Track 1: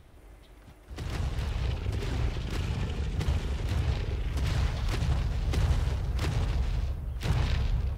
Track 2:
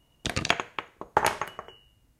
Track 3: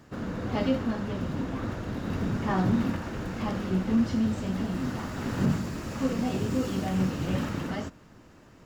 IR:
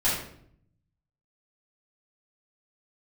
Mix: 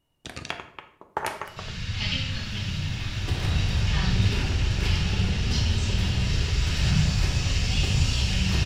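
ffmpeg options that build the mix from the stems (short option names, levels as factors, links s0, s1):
-filter_complex "[0:a]acompressor=threshold=0.0224:ratio=6,adelay=2300,volume=1.41,asplit=2[s0][s1];[s1]volume=0.355[s2];[1:a]volume=0.794,afade=t=in:st=1.08:d=0.54:silence=0.421697,asplit=2[s3][s4];[s4]volume=0.126[s5];[2:a]firequalizer=gain_entry='entry(120,0);entry(280,-24);entry(2600,11);entry(5300,12);entry(14000,-11)':delay=0.05:min_phase=1,adelay=1450,volume=0.841,asplit=2[s6][s7];[s7]volume=0.398[s8];[3:a]atrim=start_sample=2205[s9];[s2][s5][s8]amix=inputs=3:normalize=0[s10];[s10][s9]afir=irnorm=-1:irlink=0[s11];[s0][s3][s6][s11]amix=inputs=4:normalize=0,bandreject=f=6600:w=25"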